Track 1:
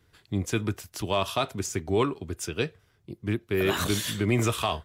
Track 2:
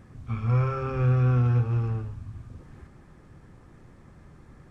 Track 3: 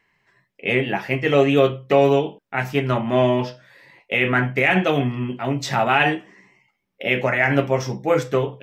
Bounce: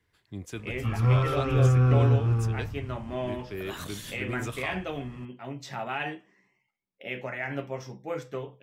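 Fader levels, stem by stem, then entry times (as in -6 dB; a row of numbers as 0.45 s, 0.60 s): -10.5 dB, +1.0 dB, -15.0 dB; 0.00 s, 0.55 s, 0.00 s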